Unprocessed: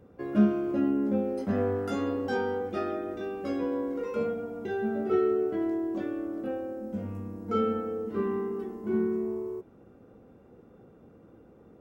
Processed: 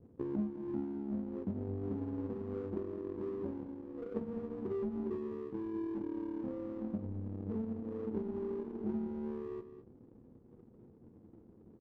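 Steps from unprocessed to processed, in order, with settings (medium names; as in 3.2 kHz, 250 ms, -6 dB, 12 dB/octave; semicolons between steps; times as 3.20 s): local Wiener filter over 41 samples; low-pass that closes with the level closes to 310 Hz, closed at -27 dBFS; inverse Chebyshev low-pass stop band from 2 kHz, stop band 70 dB; compression 6:1, threshold -40 dBFS, peak gain reduction 19.5 dB; flange 0.2 Hz, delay 7.7 ms, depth 2.8 ms, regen -58%; power-law waveshaper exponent 1.4; doubling 23 ms -13 dB; delay 206 ms -12 dB; trim +10.5 dB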